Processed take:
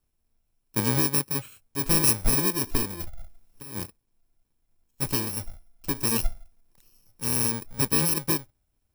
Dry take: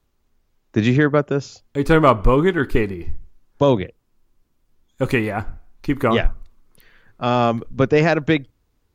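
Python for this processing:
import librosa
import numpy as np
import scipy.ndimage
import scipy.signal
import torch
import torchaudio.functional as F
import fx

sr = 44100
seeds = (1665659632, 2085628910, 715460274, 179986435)

y = fx.bit_reversed(x, sr, seeds[0], block=64)
y = fx.over_compress(y, sr, threshold_db=-27.0, ratio=-1.0, at=(2.99, 3.78), fade=0.02)
y = y * librosa.db_to_amplitude(-8.0)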